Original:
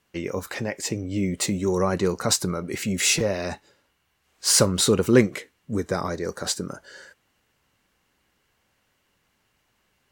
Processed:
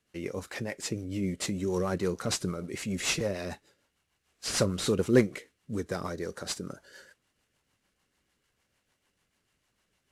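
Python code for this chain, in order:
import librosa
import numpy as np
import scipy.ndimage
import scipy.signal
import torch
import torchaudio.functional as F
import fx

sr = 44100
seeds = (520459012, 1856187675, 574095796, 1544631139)

y = fx.cvsd(x, sr, bps=64000)
y = fx.rotary(y, sr, hz=6.7)
y = y * 10.0 ** (-4.5 / 20.0)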